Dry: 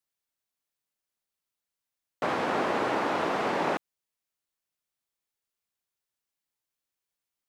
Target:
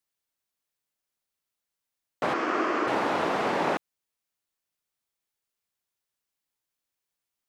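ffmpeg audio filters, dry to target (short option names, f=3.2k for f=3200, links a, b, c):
-filter_complex "[0:a]asplit=3[a][b][c];[a]afade=t=out:st=2.33:d=0.02[d];[b]highpass=320,equalizer=f=320:t=q:w=4:g=9,equalizer=f=520:t=q:w=4:g=-5,equalizer=f=850:t=q:w=4:g=-9,equalizer=f=1.2k:t=q:w=4:g=6,equalizer=f=3.8k:t=q:w=4:g=-9,lowpass=f=7k:w=0.5412,lowpass=f=7k:w=1.3066,afade=t=in:st=2.33:d=0.02,afade=t=out:st=2.86:d=0.02[e];[c]afade=t=in:st=2.86:d=0.02[f];[d][e][f]amix=inputs=3:normalize=0,volume=1.5dB"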